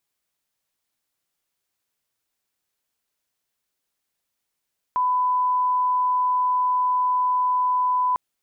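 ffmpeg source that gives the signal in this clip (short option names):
-f lavfi -i "sine=f=1000:d=3.2:r=44100,volume=0.06dB"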